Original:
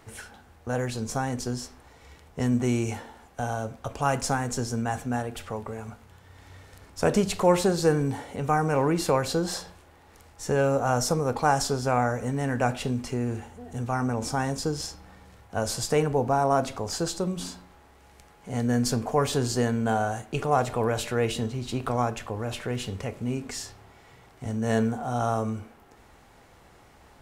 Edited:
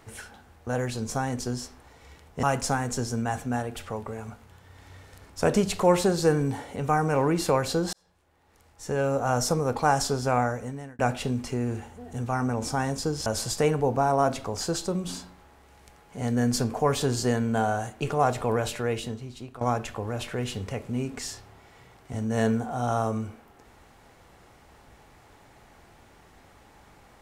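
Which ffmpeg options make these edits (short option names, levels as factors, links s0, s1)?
-filter_complex "[0:a]asplit=6[s0][s1][s2][s3][s4][s5];[s0]atrim=end=2.432[s6];[s1]atrim=start=4.028:end=9.53,asetpts=PTS-STARTPTS,afade=t=out:st=5.498:d=0.004:c=hsin[s7];[s2]atrim=start=9.53:end=12.59,asetpts=PTS-STARTPTS,afade=t=in:d=1.5,afade=t=out:st=2.46:d=0.6[s8];[s3]atrim=start=12.59:end=14.862,asetpts=PTS-STARTPTS,afade=t=in:d=0.004:c=hsin[s9];[s4]atrim=start=15.578:end=21.93,asetpts=PTS-STARTPTS,afade=t=out:st=5.302:d=1.05:silence=0.158489[s10];[s5]atrim=start=21.93,asetpts=PTS-STARTPTS,afade=t=in:d=0.004:c=hsin:silence=0.158489[s11];[s7][s8][s9]concat=n=3:v=0:a=1[s12];[s6][s12]acrossfade=d=0.004:c1=hsin:c2=hsin[s13];[s10][s11]concat=n=2:v=0:a=1[s14];[s13][s14]acrossfade=d=0.004:c1=hsin:c2=hsin"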